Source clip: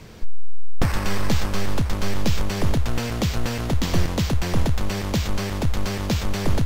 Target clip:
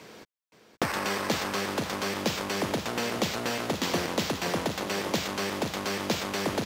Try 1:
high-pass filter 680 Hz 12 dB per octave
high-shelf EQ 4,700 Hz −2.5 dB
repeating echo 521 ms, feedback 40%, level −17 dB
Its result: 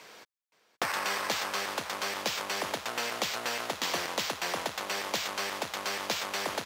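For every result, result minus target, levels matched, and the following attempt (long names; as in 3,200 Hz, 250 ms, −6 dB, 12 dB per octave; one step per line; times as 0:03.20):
250 Hz band −10.0 dB; echo-to-direct −7.5 dB
high-pass filter 300 Hz 12 dB per octave
high-shelf EQ 4,700 Hz −2.5 dB
repeating echo 521 ms, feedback 40%, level −17 dB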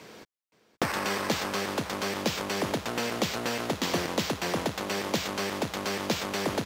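echo-to-direct −7.5 dB
high-pass filter 300 Hz 12 dB per octave
high-shelf EQ 4,700 Hz −2.5 dB
repeating echo 521 ms, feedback 40%, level −9.5 dB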